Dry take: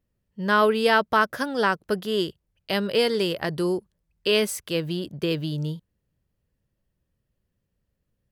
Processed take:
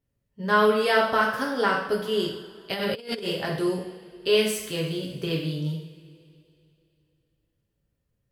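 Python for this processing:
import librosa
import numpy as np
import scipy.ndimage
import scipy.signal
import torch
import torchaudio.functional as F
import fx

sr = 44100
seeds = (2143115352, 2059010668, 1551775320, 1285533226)

y = fx.rev_double_slope(x, sr, seeds[0], early_s=0.65, late_s=2.9, knee_db=-19, drr_db=-2.5)
y = fx.over_compress(y, sr, threshold_db=-24.0, ratio=-0.5, at=(2.71, 3.26), fade=0.02)
y = y * librosa.db_to_amplitude(-5.0)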